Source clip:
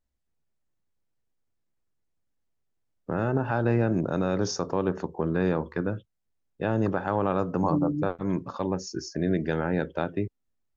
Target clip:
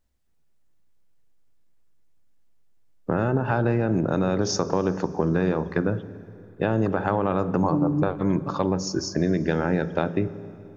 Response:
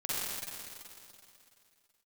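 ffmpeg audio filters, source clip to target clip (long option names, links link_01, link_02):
-filter_complex "[0:a]acompressor=threshold=-26dB:ratio=6,asplit=2[link_01][link_02];[1:a]atrim=start_sample=2205,lowshelf=frequency=460:gain=9.5[link_03];[link_02][link_03]afir=irnorm=-1:irlink=0,volume=-23dB[link_04];[link_01][link_04]amix=inputs=2:normalize=0,volume=7dB"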